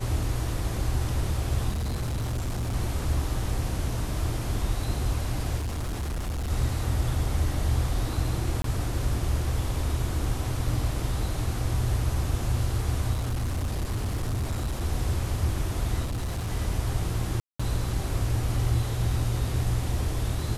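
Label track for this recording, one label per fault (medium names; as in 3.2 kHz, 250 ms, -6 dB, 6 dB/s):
1.690000	2.750000	clipped -25.5 dBFS
5.580000	6.510000	clipped -27 dBFS
8.620000	8.640000	dropout 23 ms
13.130000	14.820000	clipped -24.5 dBFS
16.040000	16.510000	clipped -26.5 dBFS
17.400000	17.590000	dropout 195 ms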